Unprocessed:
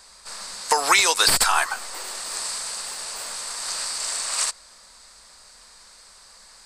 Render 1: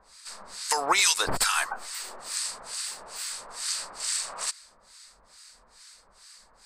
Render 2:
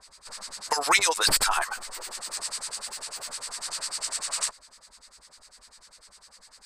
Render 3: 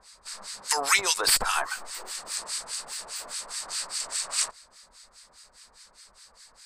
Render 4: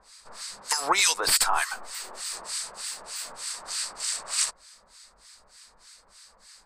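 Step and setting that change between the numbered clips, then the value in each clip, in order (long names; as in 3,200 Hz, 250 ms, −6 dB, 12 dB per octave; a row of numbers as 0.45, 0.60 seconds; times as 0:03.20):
two-band tremolo in antiphase, speed: 2.3, 10, 4.9, 3.3 Hertz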